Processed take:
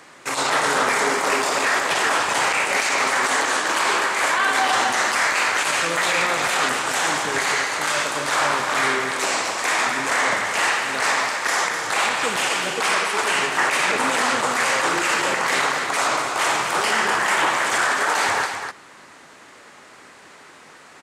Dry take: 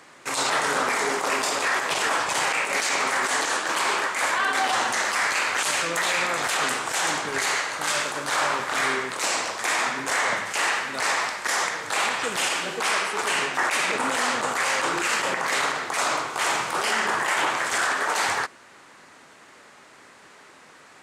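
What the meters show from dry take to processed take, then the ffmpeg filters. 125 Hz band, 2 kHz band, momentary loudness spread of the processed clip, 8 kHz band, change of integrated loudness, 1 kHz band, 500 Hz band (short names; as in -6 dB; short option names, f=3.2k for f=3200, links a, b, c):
+4.5 dB, +4.0 dB, 3 LU, +2.5 dB, +4.0 dB, +4.0 dB, +4.5 dB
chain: -filter_complex "[0:a]acrossover=split=2900[a][b];[b]alimiter=limit=-21.5dB:level=0:latency=1:release=92[c];[a][c]amix=inputs=2:normalize=0,aecho=1:1:251:0.422,volume=3.5dB"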